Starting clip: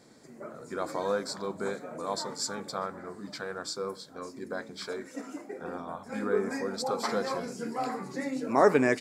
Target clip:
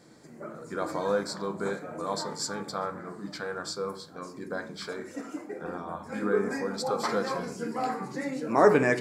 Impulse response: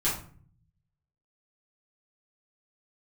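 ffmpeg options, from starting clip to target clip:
-filter_complex "[0:a]asplit=2[a][b];[1:a]atrim=start_sample=2205,lowpass=3.6k[c];[b][c]afir=irnorm=-1:irlink=0,volume=-14.5dB[d];[a][d]amix=inputs=2:normalize=0"

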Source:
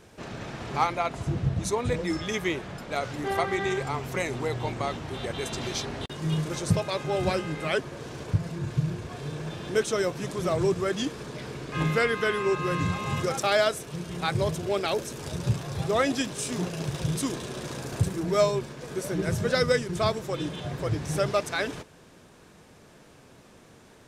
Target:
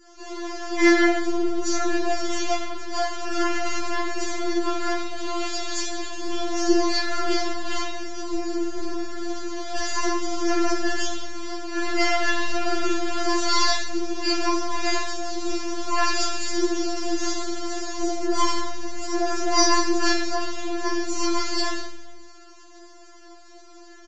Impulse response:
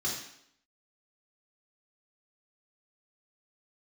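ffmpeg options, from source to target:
-filter_complex "[0:a]highpass=70,equalizer=f=2k:w=4.5:g=-12,aresample=16000,aeval=exprs='abs(val(0))':c=same,aresample=44100[a];[1:a]atrim=start_sample=2205[b];[a][b]afir=irnorm=-1:irlink=0,afftfilt=real='re*4*eq(mod(b,16),0)':imag='im*4*eq(mod(b,16),0)':win_size=2048:overlap=0.75,volume=4dB"

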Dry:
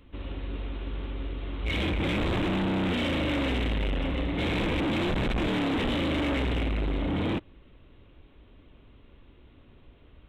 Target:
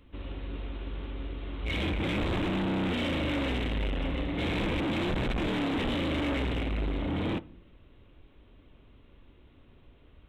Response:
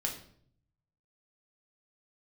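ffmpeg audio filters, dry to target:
-filter_complex "[0:a]asplit=2[a][b];[1:a]atrim=start_sample=2205,lowpass=2k,adelay=24[c];[b][c]afir=irnorm=-1:irlink=0,volume=-18.5dB[d];[a][d]amix=inputs=2:normalize=0,volume=-2.5dB"

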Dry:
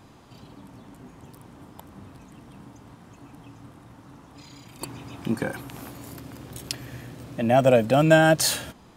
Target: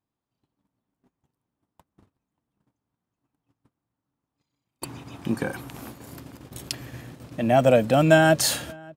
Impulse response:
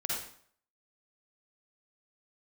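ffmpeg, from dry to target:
-filter_complex "[0:a]agate=range=-36dB:threshold=-40dB:ratio=16:detection=peak,asplit=2[a][b];[b]adelay=583.1,volume=-25dB,highshelf=f=4k:g=-13.1[c];[a][c]amix=inputs=2:normalize=0"

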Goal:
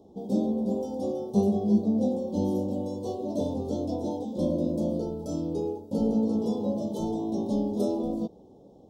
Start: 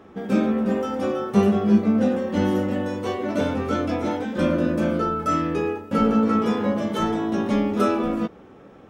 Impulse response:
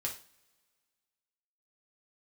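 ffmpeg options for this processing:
-af "asuperstop=centerf=1800:order=8:qfactor=0.61,volume=-5.5dB"

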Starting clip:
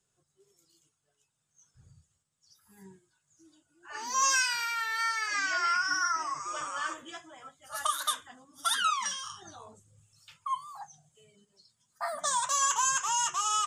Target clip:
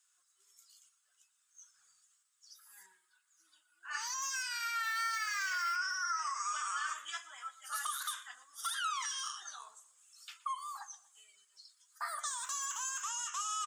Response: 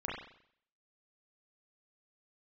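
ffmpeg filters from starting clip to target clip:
-filter_complex "[0:a]volume=19.5dB,asoftclip=hard,volume=-19.5dB,asettb=1/sr,asplit=3[a][b][c];[a]atrim=end=2.864[d];[b]atrim=start=2.86:end=3.91,asetpts=PTS-STARTPTS,afade=t=in:d=0.004:c=qsin,afade=t=out:st=1.046:d=0.004:c=qsin,equalizer=f=6.7k:t=o:w=0.82:g=-10[e];[c]atrim=start=3.906[f];[d][e]acrossfade=d=0.004:c1=hsin:c2=qsin[g];[g][f]acrossfade=d=0.004:c1=qsin:c2=hsin,asettb=1/sr,asplit=3[h][i][j];[h]atrim=end=12.304[k];[i]atrim=start=12.3:end=13.02,asetpts=PTS-STARTPTS,afade=t=in:d=0.004:c=qsin,afade=t=out:st=0.716:d=0.004:c=qsin,aeval=exprs='sgn(val(0))*max(abs(val(0))-0.002,0)':c=same[l];[j]atrim=start=13.016[m];[k][l]acrossfade=d=0.004:c1=hsin:c2=qsin[n];[n][m]acrossfade=d=0.004:c1=qsin:c2=hsin,alimiter=level_in=5dB:limit=-24dB:level=0:latency=1:release=83,volume=-5dB,highshelf=f=2.8k:g=11.5,acompressor=threshold=-33dB:ratio=4,asettb=1/sr,asplit=3[o][p][q];[o]atrim=end=4.834[r];[p]atrim=start=4.83:end=5.76,asetpts=PTS-STARTPTS,afade=t=in:d=0.004:c=qsin,afade=t=out:st=0.926:d=0.004:c=qsin,acrusher=bits=3:mode=log:mix=0:aa=0.000001[s];[q]atrim=start=5.756[t];[r][s]acrossfade=d=0.004:c1=hsin:c2=qsin[u];[u][t]acrossfade=d=0.004:c1=qsin:c2=hsin,highpass=f=1.3k:t=q:w=2.3,asplit=2[v][w];[w]adelay=119,lowpass=f=3.7k:p=1,volume=-17.5dB,asplit=2[x][y];[y]adelay=119,lowpass=f=3.7k:p=1,volume=0.35,asplit=2[z][aa];[aa]adelay=119,lowpass=f=3.7k:p=1,volume=0.35[ab];[v][x][z][ab]amix=inputs=4:normalize=0,volume=-4.5dB"

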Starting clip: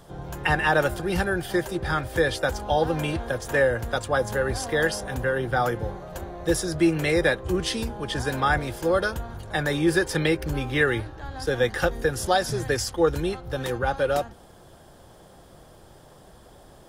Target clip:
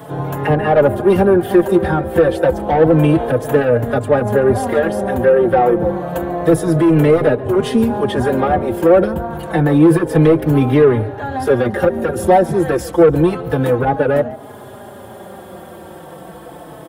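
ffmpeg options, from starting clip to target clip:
-filter_complex "[0:a]highpass=150,equalizer=f=5.6k:t=o:w=1.4:g=-14.5,bandreject=f=4.8k:w=29,acrossover=split=700[a][b];[b]acompressor=threshold=-44dB:ratio=6[c];[a][c]amix=inputs=2:normalize=0,apsyclip=19dB,asoftclip=type=tanh:threshold=-4.5dB,asplit=3[d][e][f];[e]adelay=142,afreqshift=63,volume=-20dB[g];[f]adelay=284,afreqshift=126,volume=-30.2dB[h];[d][g][h]amix=inputs=3:normalize=0,asplit=2[i][j];[j]adelay=4.2,afreqshift=-0.29[k];[i][k]amix=inputs=2:normalize=1,volume=1.5dB"

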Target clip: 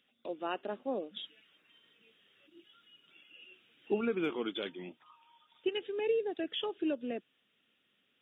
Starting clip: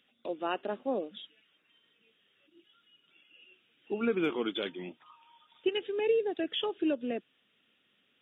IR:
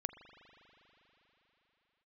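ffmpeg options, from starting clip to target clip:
-filter_complex "[0:a]asettb=1/sr,asplit=3[a][b][c];[a]atrim=end=1.164[d];[b]atrim=start=1.16:end=4.01,asetpts=PTS-STARTPTS,afade=t=in:d=0.004:c=qsin,afade=t=out:st=2.846:d=0.004:c=qsin,acontrast=67[e];[c]atrim=start=4.006[f];[d][e]acrossfade=d=0.004:c1=hsin:c2=qsin[g];[g][f]acrossfade=d=0.004:c1=qsin:c2=hsin,volume=-3.5dB"

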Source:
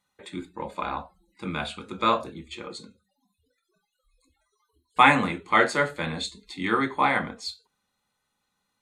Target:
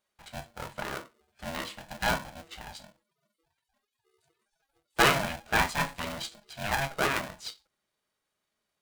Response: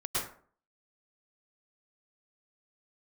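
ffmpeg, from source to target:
-af "aeval=exprs='val(0)*sgn(sin(2*PI*410*n/s))':c=same,volume=-5.5dB"

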